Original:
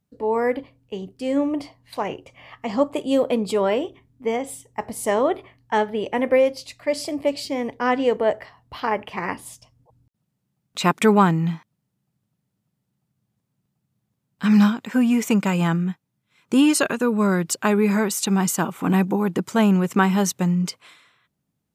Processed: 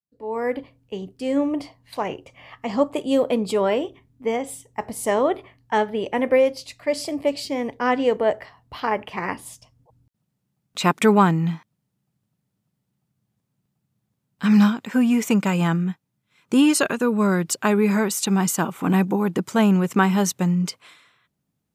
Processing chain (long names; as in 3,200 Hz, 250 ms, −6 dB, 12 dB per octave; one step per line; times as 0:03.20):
fade in at the beginning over 0.65 s